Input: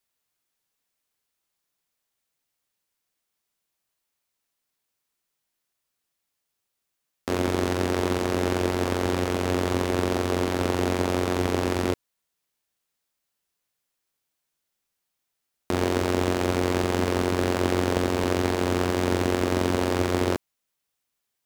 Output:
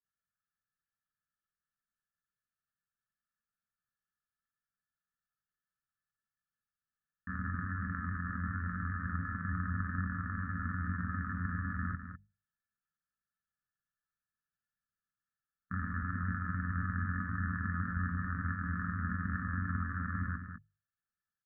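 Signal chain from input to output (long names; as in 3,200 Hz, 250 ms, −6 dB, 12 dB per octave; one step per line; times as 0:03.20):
inverse Chebyshev band-stop filter 320–890 Hz, stop band 40 dB
mains-hum notches 50/100/150/200 Hz
granular cloud 100 ms, grains 20 per second, spray 12 ms, pitch spread up and down by 0 semitones
Chebyshev low-pass with heavy ripple 1,800 Hz, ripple 9 dB
on a send: single-tap delay 203 ms −8.5 dB
on the sum: level +4 dB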